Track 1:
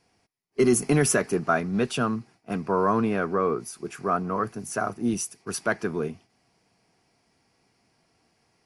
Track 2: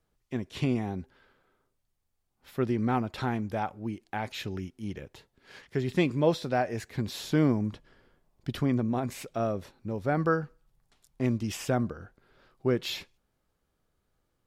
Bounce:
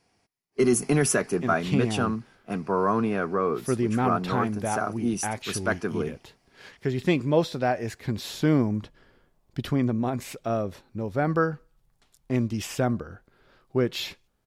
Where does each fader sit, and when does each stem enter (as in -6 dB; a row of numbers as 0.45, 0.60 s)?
-1.0, +2.5 dB; 0.00, 1.10 s